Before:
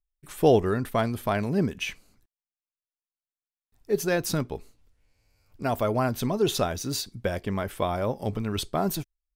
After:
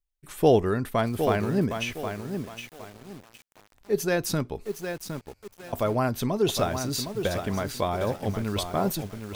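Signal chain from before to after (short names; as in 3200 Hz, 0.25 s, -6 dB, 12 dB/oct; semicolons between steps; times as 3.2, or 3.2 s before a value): 4.35–5.73 auto swell 0.741 s; lo-fi delay 0.762 s, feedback 35%, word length 7-bit, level -7 dB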